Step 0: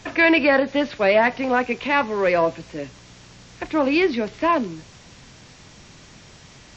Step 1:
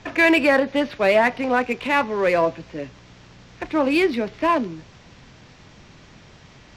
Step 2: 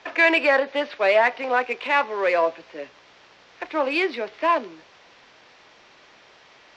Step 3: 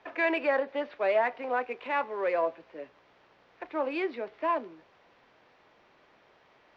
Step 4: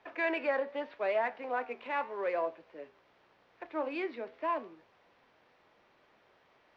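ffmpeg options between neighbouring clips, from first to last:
-af "adynamicsmooth=sensitivity=5.5:basefreq=4.4k"
-filter_complex "[0:a]acrossover=split=380 6000:gain=0.0631 1 0.126[a][b][c];[a][b][c]amix=inputs=3:normalize=0"
-af "lowpass=f=1.2k:p=1,volume=-6dB"
-af "flanger=delay=8.3:depth=4.8:regen=84:speed=0.83:shape=triangular"

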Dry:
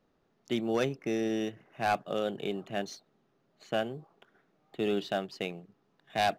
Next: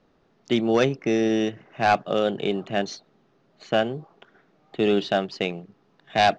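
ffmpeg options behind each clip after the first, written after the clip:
-af "lowpass=f=6.4k:w=0.5412,lowpass=f=6.4k:w=1.3066,volume=9dB"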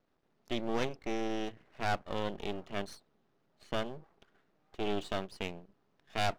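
-af "aeval=exprs='max(val(0),0)':c=same,volume=-9dB"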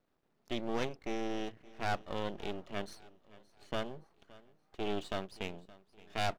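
-af "aecho=1:1:570|1140|1710:0.0891|0.0392|0.0173,volume=-2dB"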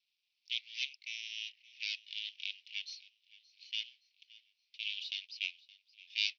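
-af "asuperpass=centerf=3700:order=12:qfactor=1.1,volume=9dB"

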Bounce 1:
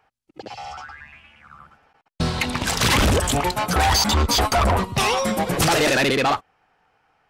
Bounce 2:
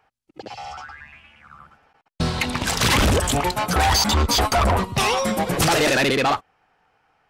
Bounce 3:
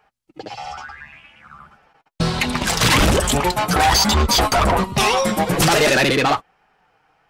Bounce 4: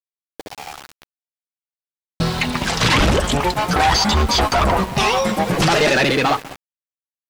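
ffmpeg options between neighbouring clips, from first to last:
-af anull
-af "flanger=delay=4.8:depth=1.8:regen=-40:speed=1.2:shape=sinusoidal,volume=7dB"
-filter_complex "[0:a]asplit=2[a][b];[b]adelay=200,lowpass=f=1.5k:p=1,volume=-14.5dB,asplit=2[c][d];[d]adelay=200,lowpass=f=1.5k:p=1,volume=0.46,asplit=2[e][f];[f]adelay=200,lowpass=f=1.5k:p=1,volume=0.46,asplit=2[g][h];[h]adelay=200,lowpass=f=1.5k:p=1,volume=0.46[i];[a][c][e][g][i]amix=inputs=5:normalize=0,aeval=exprs='val(0)*gte(abs(val(0)),0.0398)':c=same,acrossover=split=6500[j][k];[k]acompressor=threshold=-37dB:ratio=4:attack=1:release=60[l];[j][l]amix=inputs=2:normalize=0"

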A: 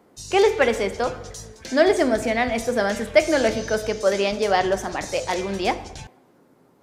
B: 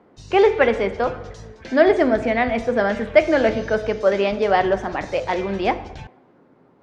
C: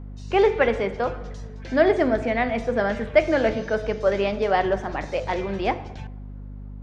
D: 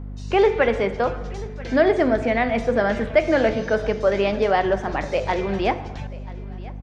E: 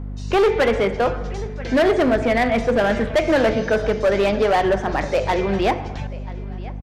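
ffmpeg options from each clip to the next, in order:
-af "lowpass=2.7k,volume=2.5dB"
-af "aeval=exprs='val(0)+0.0251*(sin(2*PI*50*n/s)+sin(2*PI*2*50*n/s)/2+sin(2*PI*3*50*n/s)/3+sin(2*PI*4*50*n/s)/4+sin(2*PI*5*50*n/s)/5)':c=same,volume=-3.5dB"
-filter_complex "[0:a]asplit=2[a][b];[b]alimiter=limit=-15dB:level=0:latency=1:release=187,volume=2.5dB[c];[a][c]amix=inputs=2:normalize=0,aecho=1:1:986|1972:0.0944|0.0293,volume=-3.5dB"
-af "asoftclip=type=hard:threshold=-16dB,aresample=32000,aresample=44100,volume=3.5dB"

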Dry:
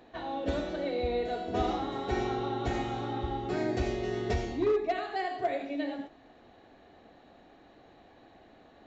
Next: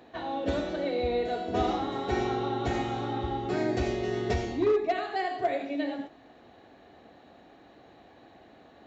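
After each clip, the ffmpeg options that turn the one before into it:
-af "highpass=61,volume=2.5dB"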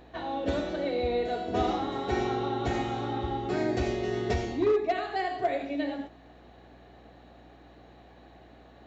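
-af "aeval=exprs='val(0)+0.00158*(sin(2*PI*60*n/s)+sin(2*PI*2*60*n/s)/2+sin(2*PI*3*60*n/s)/3+sin(2*PI*4*60*n/s)/4+sin(2*PI*5*60*n/s)/5)':c=same"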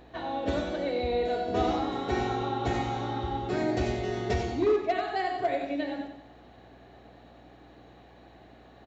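-af "aecho=1:1:93|186|279|372|465:0.355|0.156|0.0687|0.0302|0.0133"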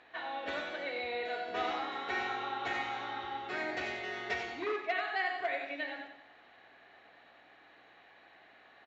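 -af "bandpass=f=2k:t=q:w=1.4:csg=0,volume=4dB"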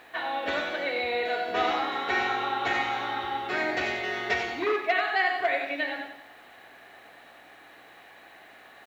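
-af "acrusher=bits=11:mix=0:aa=0.000001,volume=8.5dB"

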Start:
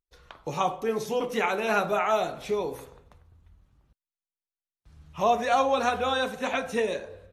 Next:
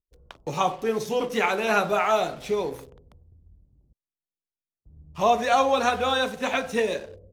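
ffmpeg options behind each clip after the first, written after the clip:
-filter_complex "[0:a]acrossover=split=560[a][b];[b]aeval=exprs='sgn(val(0))*max(abs(val(0))-0.00316,0)':c=same[c];[a][c]amix=inputs=2:normalize=0,equalizer=f=4.7k:w=0.46:g=2.5,volume=2.5dB"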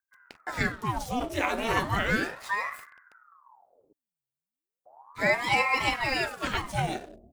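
-af "aexciter=amount=2.3:drive=1.9:freq=7.8k,aeval=exprs='val(0)*sin(2*PI*860*n/s+860*0.85/0.35*sin(2*PI*0.35*n/s))':c=same,volume=-1.5dB"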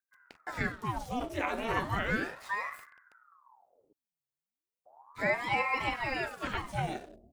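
-filter_complex "[0:a]acrossover=split=2900[a][b];[b]acompressor=threshold=-44dB:ratio=4:attack=1:release=60[c];[a][c]amix=inputs=2:normalize=0,volume=-4.5dB"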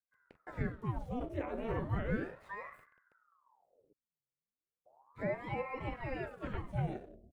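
-filter_complex "[0:a]firequalizer=gain_entry='entry(160,0);entry(250,-5);entry(500,-2);entry(760,-11);entry(2100,-13);entry(5100,-24);entry(8900,-21)':delay=0.05:min_phase=1,acrossover=split=1000[a][b];[b]alimiter=level_in=15dB:limit=-24dB:level=0:latency=1:release=203,volume=-15dB[c];[a][c]amix=inputs=2:normalize=0,volume=1.5dB"

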